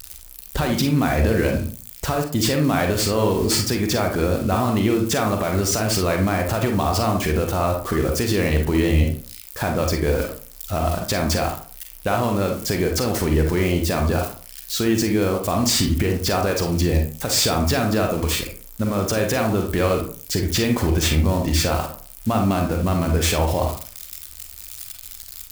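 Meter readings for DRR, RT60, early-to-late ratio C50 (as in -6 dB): 2.5 dB, 0.40 s, 6.5 dB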